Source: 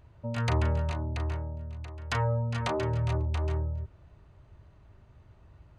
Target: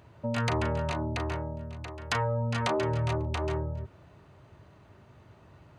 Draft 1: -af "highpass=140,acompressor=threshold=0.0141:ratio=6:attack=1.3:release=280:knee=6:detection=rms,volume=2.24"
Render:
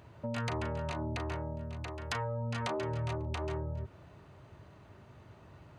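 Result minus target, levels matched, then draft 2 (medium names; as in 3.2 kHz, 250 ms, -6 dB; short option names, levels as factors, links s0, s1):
compression: peak gain reduction +7 dB
-af "highpass=140,acompressor=threshold=0.0376:ratio=6:attack=1.3:release=280:knee=6:detection=rms,volume=2.24"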